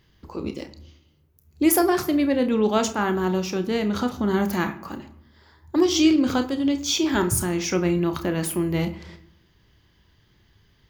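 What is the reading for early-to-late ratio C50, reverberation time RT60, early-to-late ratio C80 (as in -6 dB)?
14.0 dB, no single decay rate, 17.5 dB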